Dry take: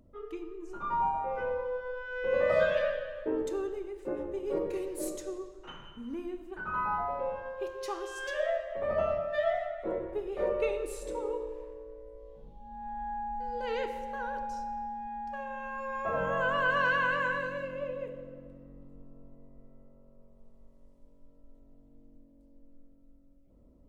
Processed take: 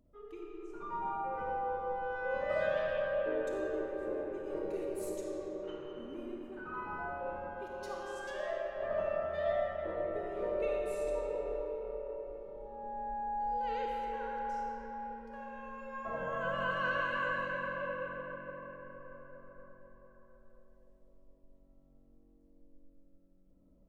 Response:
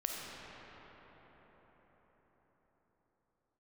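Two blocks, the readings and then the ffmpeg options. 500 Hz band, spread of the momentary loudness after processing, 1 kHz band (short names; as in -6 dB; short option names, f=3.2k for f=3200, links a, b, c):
-3.5 dB, 13 LU, -3.5 dB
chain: -filter_complex "[1:a]atrim=start_sample=2205[a];[0:a][a]afir=irnorm=-1:irlink=0,volume=-8dB"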